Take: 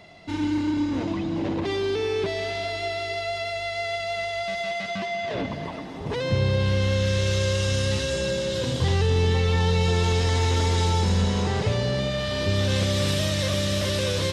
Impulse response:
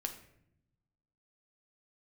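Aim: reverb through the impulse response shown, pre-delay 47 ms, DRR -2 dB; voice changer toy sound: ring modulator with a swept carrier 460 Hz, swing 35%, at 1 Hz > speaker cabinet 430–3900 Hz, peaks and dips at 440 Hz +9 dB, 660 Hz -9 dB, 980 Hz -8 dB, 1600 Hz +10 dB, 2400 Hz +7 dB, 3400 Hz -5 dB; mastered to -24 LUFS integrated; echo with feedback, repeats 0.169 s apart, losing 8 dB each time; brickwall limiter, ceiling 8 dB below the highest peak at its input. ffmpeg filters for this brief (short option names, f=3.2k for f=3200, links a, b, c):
-filter_complex "[0:a]alimiter=limit=-20dB:level=0:latency=1,aecho=1:1:169|338|507|676|845:0.398|0.159|0.0637|0.0255|0.0102,asplit=2[a][b];[1:a]atrim=start_sample=2205,adelay=47[c];[b][c]afir=irnorm=-1:irlink=0,volume=2.5dB[d];[a][d]amix=inputs=2:normalize=0,aeval=exprs='val(0)*sin(2*PI*460*n/s+460*0.35/1*sin(2*PI*1*n/s))':c=same,highpass=430,equalizer=f=440:t=q:w=4:g=9,equalizer=f=660:t=q:w=4:g=-9,equalizer=f=980:t=q:w=4:g=-8,equalizer=f=1.6k:t=q:w=4:g=10,equalizer=f=2.4k:t=q:w=4:g=7,equalizer=f=3.4k:t=q:w=4:g=-5,lowpass=f=3.9k:w=0.5412,lowpass=f=3.9k:w=1.3066,volume=1dB"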